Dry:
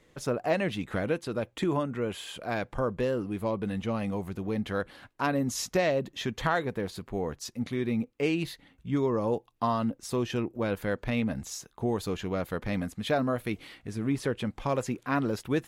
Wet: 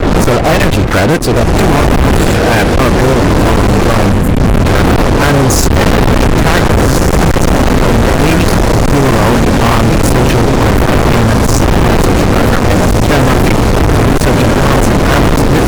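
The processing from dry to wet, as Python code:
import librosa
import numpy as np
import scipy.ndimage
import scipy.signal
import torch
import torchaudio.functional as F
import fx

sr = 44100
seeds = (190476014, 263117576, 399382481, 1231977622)

p1 = fx.spec_quant(x, sr, step_db=30)
p2 = fx.dmg_wind(p1, sr, seeds[0], corner_hz=410.0, level_db=-29.0)
p3 = fx.low_shelf(p2, sr, hz=97.0, db=11.0)
p4 = p3 + fx.echo_diffused(p3, sr, ms=1543, feedback_pct=57, wet_db=-6.0, dry=0)
p5 = fx.spec_box(p4, sr, start_s=4.11, length_s=0.55, low_hz=290.0, high_hz=6600.0, gain_db=-12)
p6 = fx.schmitt(p5, sr, flips_db=-20.0)
p7 = p5 + (p6 * librosa.db_to_amplitude(-12.0))
p8 = fx.peak_eq(p7, sr, hz=3300.0, db=-14.0, octaves=0.31)
p9 = fx.fuzz(p8, sr, gain_db=40.0, gate_db=-43.0)
y = p9 * librosa.db_to_amplitude(7.0)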